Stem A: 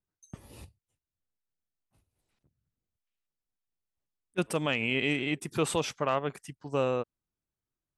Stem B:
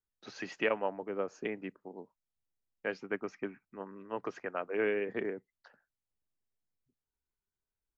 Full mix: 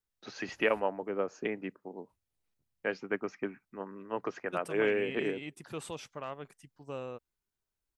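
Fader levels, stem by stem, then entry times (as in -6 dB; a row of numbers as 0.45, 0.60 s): -12.0, +2.5 dB; 0.15, 0.00 s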